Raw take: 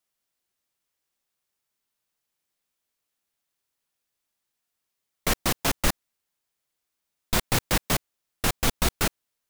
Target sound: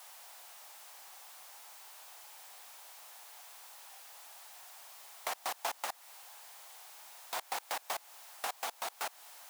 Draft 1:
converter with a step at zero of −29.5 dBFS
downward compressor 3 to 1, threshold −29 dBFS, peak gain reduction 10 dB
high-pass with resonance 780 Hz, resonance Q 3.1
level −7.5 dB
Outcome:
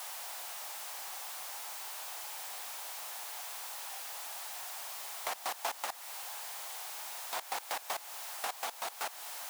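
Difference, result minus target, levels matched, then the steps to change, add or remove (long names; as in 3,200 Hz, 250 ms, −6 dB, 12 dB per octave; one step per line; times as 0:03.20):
converter with a step at zero: distortion +9 dB
change: converter with a step at zero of −39.5 dBFS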